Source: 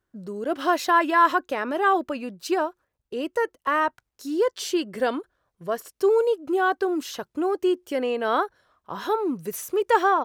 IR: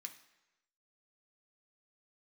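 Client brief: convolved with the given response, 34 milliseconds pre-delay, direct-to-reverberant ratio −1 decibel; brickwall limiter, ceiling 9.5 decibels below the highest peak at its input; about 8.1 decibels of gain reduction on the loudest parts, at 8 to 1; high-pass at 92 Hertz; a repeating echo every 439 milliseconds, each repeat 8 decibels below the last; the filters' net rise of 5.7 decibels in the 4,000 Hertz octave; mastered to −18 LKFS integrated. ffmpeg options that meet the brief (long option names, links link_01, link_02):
-filter_complex "[0:a]highpass=92,equalizer=frequency=4000:width_type=o:gain=7.5,acompressor=threshold=-21dB:ratio=8,alimiter=limit=-22dB:level=0:latency=1,aecho=1:1:439|878|1317|1756|2195:0.398|0.159|0.0637|0.0255|0.0102,asplit=2[link_01][link_02];[1:a]atrim=start_sample=2205,adelay=34[link_03];[link_02][link_03]afir=irnorm=-1:irlink=0,volume=6dB[link_04];[link_01][link_04]amix=inputs=2:normalize=0,volume=10.5dB"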